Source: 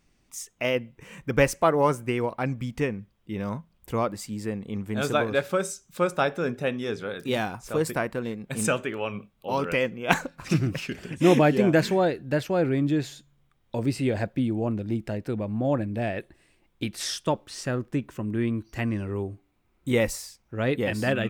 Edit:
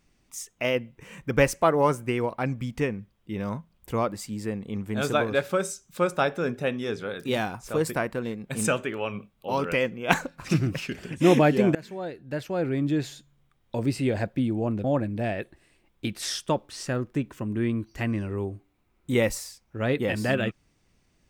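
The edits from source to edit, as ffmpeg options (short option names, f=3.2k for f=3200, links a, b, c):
-filter_complex "[0:a]asplit=3[a][b][c];[a]atrim=end=11.75,asetpts=PTS-STARTPTS,afade=t=out:st=11.746:d=0.004:c=hsin:silence=0.0707946[d];[b]atrim=start=11.75:end=14.842,asetpts=PTS-STARTPTS,afade=t=in:d=1.33:silence=0.0707946[e];[c]atrim=start=15.618[f];[d][e]concat=n=2:v=0:a=1[g];[g][f]acrossfade=d=0.004:c1=hsin:c2=hsin"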